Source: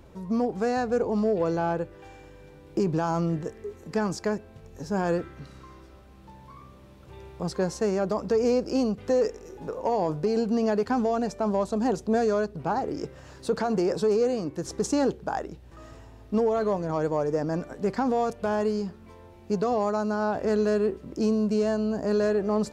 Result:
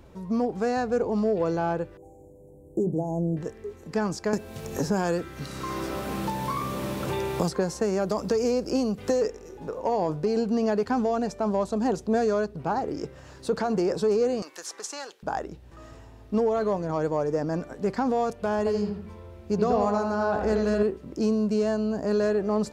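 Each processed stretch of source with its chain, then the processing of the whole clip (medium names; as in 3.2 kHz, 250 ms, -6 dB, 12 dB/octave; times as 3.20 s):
1.97–3.37 s: inverse Chebyshev band-stop 1.2–4.9 kHz + hum notches 50/100/150/200/250/300 Hz
4.33–9.22 s: treble shelf 6.3 kHz +10.5 dB + three bands compressed up and down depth 100%
14.42–15.23 s: high-pass 1.2 kHz + three bands compressed up and down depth 70%
18.58–20.83 s: peaking EQ 62 Hz +13.5 dB 0.67 oct + bucket-brigade echo 82 ms, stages 2048, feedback 37%, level -4 dB
whole clip: none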